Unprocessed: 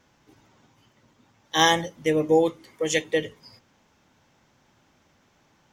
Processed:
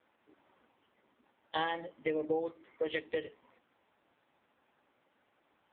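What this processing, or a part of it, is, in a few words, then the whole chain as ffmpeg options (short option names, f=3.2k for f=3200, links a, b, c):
voicemail: -filter_complex "[0:a]asplit=3[a][b][c];[a]afade=t=out:st=1.63:d=0.02[d];[b]highpass=50,afade=t=in:st=1.63:d=0.02,afade=t=out:st=2.86:d=0.02[e];[c]afade=t=in:st=2.86:d=0.02[f];[d][e][f]amix=inputs=3:normalize=0,highpass=300,lowpass=3.3k,acompressor=threshold=-25dB:ratio=8,volume=-3.5dB" -ar 8000 -c:a libopencore_amrnb -b:a 5900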